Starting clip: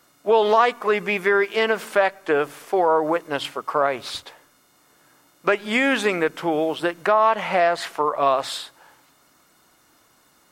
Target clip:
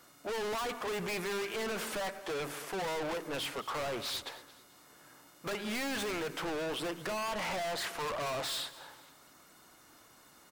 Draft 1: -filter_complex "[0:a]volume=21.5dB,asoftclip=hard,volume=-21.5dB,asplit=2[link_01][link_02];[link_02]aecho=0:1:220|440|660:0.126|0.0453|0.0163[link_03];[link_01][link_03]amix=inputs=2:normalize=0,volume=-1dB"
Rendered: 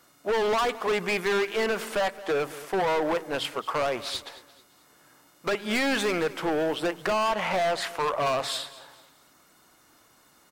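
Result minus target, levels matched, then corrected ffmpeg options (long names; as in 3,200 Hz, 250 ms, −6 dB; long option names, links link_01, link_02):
gain into a clipping stage and back: distortion −5 dB
-filter_complex "[0:a]volume=33.5dB,asoftclip=hard,volume=-33.5dB,asplit=2[link_01][link_02];[link_02]aecho=0:1:220|440|660:0.126|0.0453|0.0163[link_03];[link_01][link_03]amix=inputs=2:normalize=0,volume=-1dB"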